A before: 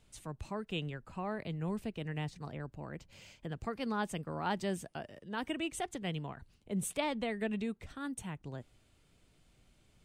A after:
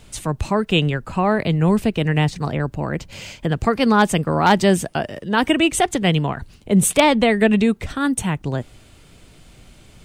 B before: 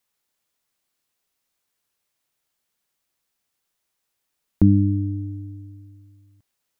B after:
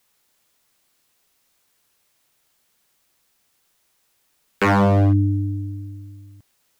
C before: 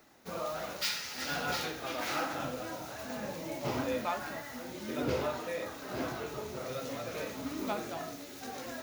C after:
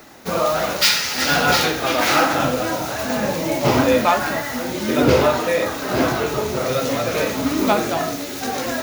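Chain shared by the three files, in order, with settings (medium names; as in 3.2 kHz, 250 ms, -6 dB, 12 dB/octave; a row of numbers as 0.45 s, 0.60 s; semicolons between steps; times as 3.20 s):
wavefolder -22.5 dBFS; normalise loudness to -19 LUFS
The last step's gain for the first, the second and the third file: +20.0 dB, +11.5 dB, +17.5 dB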